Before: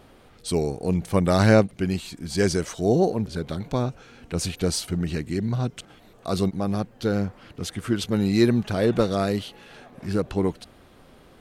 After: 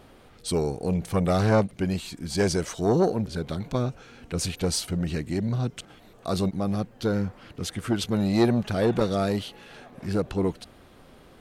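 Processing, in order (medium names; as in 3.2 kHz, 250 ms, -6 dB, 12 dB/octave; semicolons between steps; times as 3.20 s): transformer saturation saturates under 580 Hz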